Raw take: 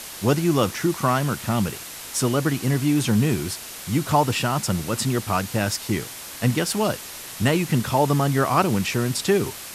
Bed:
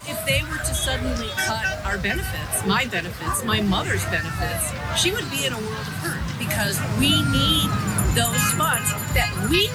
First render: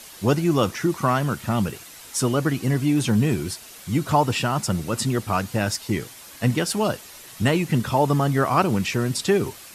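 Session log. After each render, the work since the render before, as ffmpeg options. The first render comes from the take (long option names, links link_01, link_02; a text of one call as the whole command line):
ffmpeg -i in.wav -af "afftdn=noise_reduction=8:noise_floor=-37" out.wav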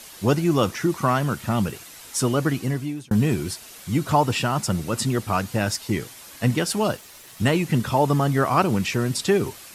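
ffmpeg -i in.wav -filter_complex "[0:a]asettb=1/sr,asplit=3[link_01][link_02][link_03];[link_01]atrim=end=6.924[link_04];[link_02]atrim=start=6.92:end=7.51,asetpts=PTS-STARTPTS,afade=type=in:duration=0.004:curve=qsin,afade=type=out:start_time=0.586:duration=0.004:curve=qsin,aeval=exprs='sgn(val(0))*max(abs(val(0))-0.00237,0)':channel_layout=same[link_05];[link_03]atrim=start=7.506[link_06];[link_04][link_05]acrossfade=duration=0.004:curve1=hsin:curve2=qsin[link_07];[link_07][link_06]acrossfade=duration=0.004:curve1=qsin:curve2=hsin,asplit=2[link_08][link_09];[link_08]atrim=end=3.11,asetpts=PTS-STARTPTS,afade=type=out:start_time=2.54:duration=0.57[link_10];[link_09]atrim=start=3.11,asetpts=PTS-STARTPTS,afade=type=in:duration=0.004:curve=hsin[link_11];[link_10][link_11]concat=n=2:v=0:a=1" out.wav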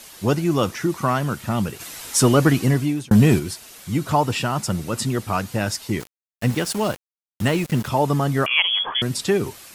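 ffmpeg -i in.wav -filter_complex "[0:a]asplit=3[link_01][link_02][link_03];[link_01]afade=type=out:start_time=1.79:duration=0.02[link_04];[link_02]acontrast=79,afade=type=in:start_time=1.79:duration=0.02,afade=type=out:start_time=3.38:duration=0.02[link_05];[link_03]afade=type=in:start_time=3.38:duration=0.02[link_06];[link_04][link_05][link_06]amix=inputs=3:normalize=0,asettb=1/sr,asplit=3[link_07][link_08][link_09];[link_07]atrim=end=6.004[link_10];[link_08]atrim=start=6:end=7.88,asetpts=PTS-STARTPTS,afade=type=in:duration=0.004:curve=qsin,afade=type=out:start_time=1.876:duration=0.004:curve=qsin,aeval=exprs='val(0)*gte(abs(val(0)),0.0299)':channel_layout=same[link_11];[link_09]atrim=start=7.876[link_12];[link_10][link_11]acrossfade=duration=0.004:curve1=hsin:curve2=qsin[link_13];[link_13][link_12]acrossfade=duration=0.004:curve1=qsin:curve2=hsin,asettb=1/sr,asplit=3[link_14][link_15][link_16];[link_14]atrim=end=8.464[link_17];[link_15]atrim=start=8.46:end=9.02,asetpts=PTS-STARTPTS,afade=type=in:duration=0.004:curve=qsin,afade=type=out:start_time=0.556:duration=0.004:curve=qsin,lowpass=frequency=3000:width_type=q:width=0.5098,lowpass=frequency=3000:width_type=q:width=0.6013,lowpass=frequency=3000:width_type=q:width=0.9,lowpass=frequency=3000:width_type=q:width=2.563,afreqshift=-3500[link_18];[link_16]atrim=start=9.016[link_19];[link_17][link_18]acrossfade=duration=0.004:curve1=hsin:curve2=qsin[link_20];[link_20][link_19]acrossfade=duration=0.004:curve1=qsin:curve2=hsin" out.wav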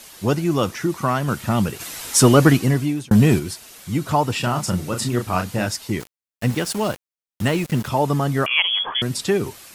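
ffmpeg -i in.wav -filter_complex "[0:a]asettb=1/sr,asplit=3[link_01][link_02][link_03];[link_01]atrim=end=4.404[link_04];[link_02]atrim=start=4.4:end=5.66,asetpts=PTS-STARTPTS,afade=type=in:duration=0.004:curve=qsin,afade=type=out:start_time=1.256:duration=0.004:curve=qsin,asplit=2[link_05][link_06];[link_06]adelay=33,volume=-5.5dB[link_07];[link_05][link_07]amix=inputs=2:normalize=0,atrim=end_sample=55566[link_08];[link_03]atrim=start=5.656[link_09];[link_04][link_08]acrossfade=duration=0.004:curve1=hsin:curve2=qsin[link_10];[link_10][link_09]acrossfade=duration=0.004:curve1=qsin:curve2=hsin,asplit=3[link_11][link_12][link_13];[link_11]atrim=end=1.282[link_14];[link_12]atrim=start=1.278:end=2.572,asetpts=PTS-STARTPTS,volume=3dB[link_15];[link_13]atrim=start=2.568[link_16];[link_14][link_15]acrossfade=duration=0.004:curve1=hsin:curve2=hsin[link_17];[link_17][link_16]acrossfade=duration=0.004:curve1=hsin:curve2=hsin" out.wav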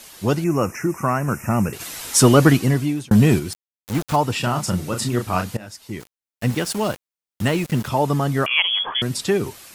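ffmpeg -i in.wav -filter_complex "[0:a]asettb=1/sr,asplit=3[link_01][link_02][link_03];[link_01]atrim=end=0.444[link_04];[link_02]atrim=start=0.44:end=1.73,asetpts=PTS-STARTPTS,afade=type=in:duration=0.004:curve=qsin,afade=type=out:start_time=1.286:duration=0.004:curve=qsin,asuperstop=centerf=3800:order=12:qfactor=1.5[link_05];[link_03]atrim=start=1.726[link_06];[link_04][link_05]acrossfade=duration=0.004:curve1=hsin:curve2=qsin[link_07];[link_07][link_06]acrossfade=duration=0.004:curve1=qsin:curve2=hsin,asettb=1/sr,asplit=3[link_08][link_09][link_10];[link_08]atrim=end=3.534[link_11];[link_09]atrim=start=3.53:end=4.16,asetpts=PTS-STARTPTS,afade=type=in:duration=0.004:curve=qsin,afade=type=out:start_time=0.626:duration=0.004:curve=qsin,aeval=exprs='val(0)*gte(abs(val(0)),0.0631)':channel_layout=same[link_12];[link_10]atrim=start=4.156[link_13];[link_11][link_12]acrossfade=duration=0.004:curve1=hsin:curve2=qsin[link_14];[link_14][link_13]acrossfade=duration=0.004:curve1=qsin:curve2=hsin,asplit=2[link_15][link_16];[link_15]atrim=end=5.57,asetpts=PTS-STARTPTS,afade=type=out:start_time=5.566:duration=0.004:curve=hsin:silence=0.105925[link_17];[link_16]atrim=start=5.57,asetpts=PTS-STARTPTS,afade=type=in:duration=0.95:silence=0.105925[link_18];[link_17][link_18]concat=n=2:v=0:a=1" out.wav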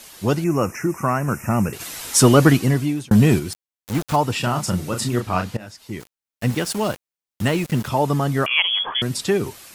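ffmpeg -i in.wav -filter_complex "[0:a]asettb=1/sr,asplit=3[link_01][link_02][link_03];[link_01]atrim=end=5.204[link_04];[link_02]atrim=start=5.2:end=5.92,asetpts=PTS-STARTPTS,afade=type=in:duration=0.004:curve=qsin,afade=type=out:start_time=0.716:duration=0.004:curve=qsin,acrossover=split=5800[link_05][link_06];[link_06]acompressor=threshold=-49dB:ratio=4:attack=1:release=60[link_07];[link_05][link_07]amix=inputs=2:normalize=0[link_08];[link_03]atrim=start=5.916[link_09];[link_04][link_08]acrossfade=duration=0.004:curve1=hsin:curve2=qsin[link_10];[link_10][link_09]acrossfade=duration=0.004:curve1=qsin:curve2=hsin" out.wav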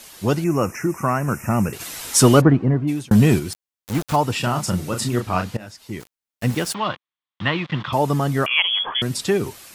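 ffmpeg -i in.wav -filter_complex "[0:a]asplit=3[link_01][link_02][link_03];[link_01]afade=type=out:start_time=2.4:duration=0.02[link_04];[link_02]lowpass=1100,afade=type=in:start_time=2.4:duration=0.02,afade=type=out:start_time=2.87:duration=0.02[link_05];[link_03]afade=type=in:start_time=2.87:duration=0.02[link_06];[link_04][link_05][link_06]amix=inputs=3:normalize=0,asettb=1/sr,asplit=3[link_07][link_08][link_09];[link_07]atrim=end=6.744[link_10];[link_08]atrim=start=6.74:end=7.93,asetpts=PTS-STARTPTS,afade=type=in:duration=0.004:curve=qsin,afade=type=out:start_time=1.186:duration=0.004:curve=qsin,highpass=130,equalizer=frequency=230:width_type=q:width=4:gain=-9,equalizer=frequency=420:width_type=q:width=4:gain=-10,equalizer=frequency=610:width_type=q:width=4:gain=-4,equalizer=frequency=1100:width_type=q:width=4:gain=9,equalizer=frequency=1900:width_type=q:width=4:gain=4,equalizer=frequency=3400:width_type=q:width=4:gain=8,lowpass=frequency=3900:width=0.5412,lowpass=frequency=3900:width=1.3066[link_11];[link_09]atrim=start=7.926[link_12];[link_10][link_11]acrossfade=duration=0.004:curve1=hsin:curve2=qsin[link_13];[link_13][link_12]acrossfade=duration=0.004:curve1=qsin:curve2=hsin" out.wav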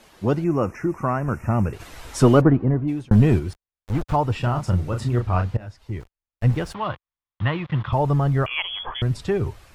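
ffmpeg -i in.wav -af "asubboost=boost=11:cutoff=68,lowpass=frequency=1100:poles=1" out.wav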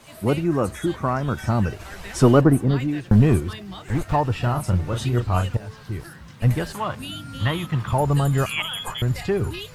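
ffmpeg -i in.wav -i bed.wav -filter_complex "[1:a]volume=-15.5dB[link_01];[0:a][link_01]amix=inputs=2:normalize=0" out.wav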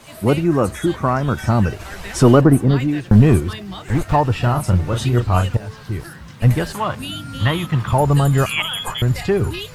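ffmpeg -i in.wav -af "volume=5dB,alimiter=limit=-2dB:level=0:latency=1" out.wav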